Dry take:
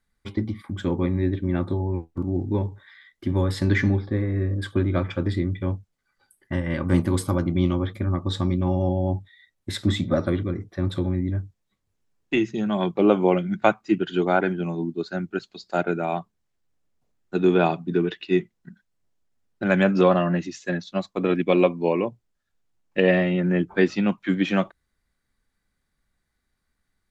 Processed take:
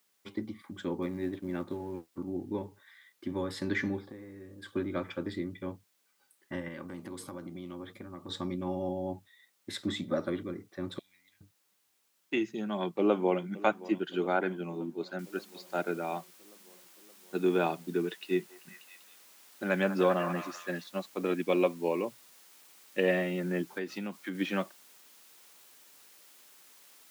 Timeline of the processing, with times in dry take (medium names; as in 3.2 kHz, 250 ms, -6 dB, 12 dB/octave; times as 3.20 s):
1.02–2.12 s: companding laws mixed up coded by A
4.10–4.72 s: compression 5:1, threshold -31 dBFS
6.68–8.29 s: compression, threshold -27 dBFS
10.99–11.41 s: inverse Chebyshev high-pass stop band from 1.2 kHz
12.40–13.45 s: echo throw 570 ms, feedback 70%, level -18 dB
15.19 s: noise floor step -66 dB -50 dB
18.19–20.87 s: repeats whose band climbs or falls 195 ms, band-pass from 1 kHz, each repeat 0.7 oct, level -6 dB
23.70–24.35 s: compression 5:1, threshold -23 dBFS
whole clip: high-pass 220 Hz 12 dB/octave; band-stop 680 Hz, Q 16; trim -7.5 dB